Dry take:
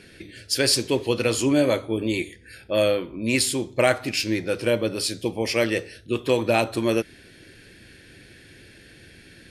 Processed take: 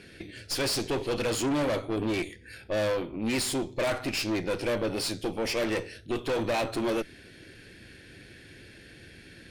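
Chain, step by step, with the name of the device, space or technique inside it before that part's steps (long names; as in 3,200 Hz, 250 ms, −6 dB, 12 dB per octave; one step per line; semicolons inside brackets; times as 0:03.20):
tube preamp driven hard (tube saturation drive 27 dB, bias 0.65; high-shelf EQ 6,500 Hz −5 dB)
level +2.5 dB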